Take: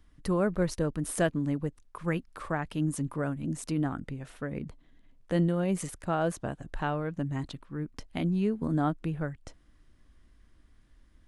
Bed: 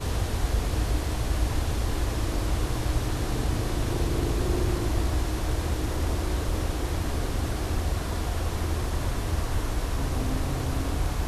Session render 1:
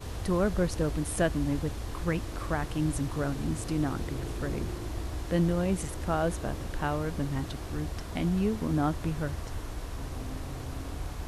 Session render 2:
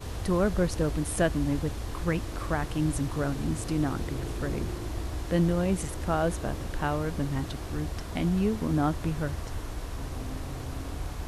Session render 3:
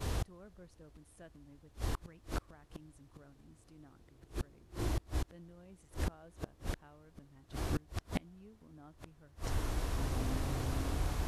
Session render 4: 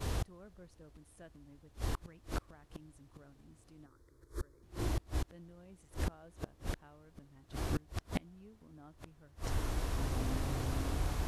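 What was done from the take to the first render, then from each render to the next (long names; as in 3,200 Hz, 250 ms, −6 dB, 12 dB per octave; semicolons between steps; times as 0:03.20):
mix in bed −9.5 dB
level +1.5 dB
gate with flip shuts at −23 dBFS, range −30 dB
0:03.86–0:04.63: phaser with its sweep stopped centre 740 Hz, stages 6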